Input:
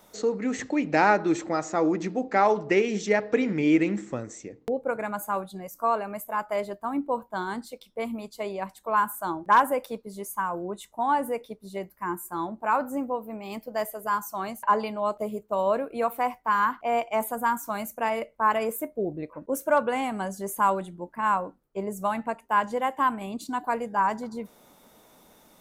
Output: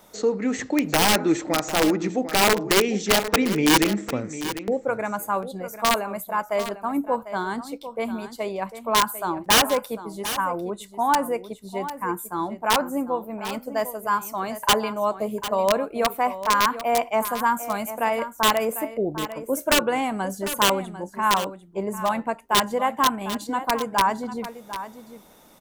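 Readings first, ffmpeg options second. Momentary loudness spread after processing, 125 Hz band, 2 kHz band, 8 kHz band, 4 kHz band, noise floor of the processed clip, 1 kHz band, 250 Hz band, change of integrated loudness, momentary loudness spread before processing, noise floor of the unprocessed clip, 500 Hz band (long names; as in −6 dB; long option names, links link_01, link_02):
11 LU, +4.5 dB, +4.5 dB, +13.0 dB, +18.5 dB, −48 dBFS, +2.0 dB, +3.0 dB, +4.0 dB, 12 LU, −59 dBFS, +3.0 dB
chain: -af "aeval=exprs='(mod(5.31*val(0)+1,2)-1)/5.31':channel_layout=same,aecho=1:1:748:0.237,volume=3.5dB"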